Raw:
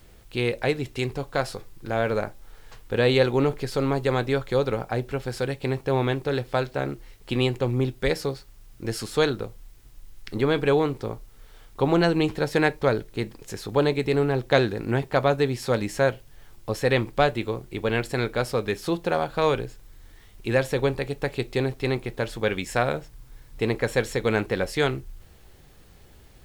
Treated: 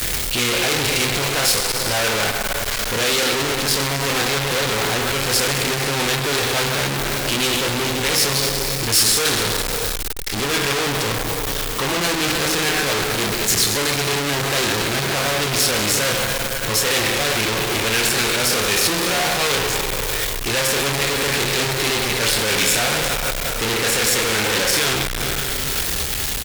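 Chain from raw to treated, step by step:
reversed playback
downward compressor 6 to 1, threshold −31 dBFS, peak gain reduction 16.5 dB
reversed playback
double-tracking delay 28 ms −5 dB
on a send at −5.5 dB: convolution reverb RT60 2.5 s, pre-delay 45 ms
on the sum: fuzz pedal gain 51 dB, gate −54 dBFS
brickwall limiter −15.5 dBFS, peak gain reduction 7.5 dB
tilt shelving filter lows −7 dB, about 1,400 Hz

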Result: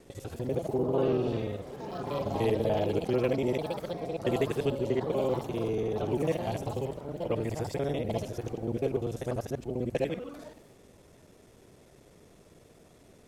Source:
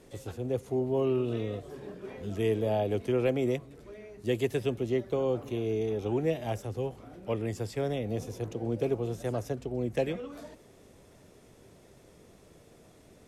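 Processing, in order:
reversed piece by piece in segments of 49 ms
delay with pitch and tempo change per echo 201 ms, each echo +4 semitones, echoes 3, each echo −6 dB

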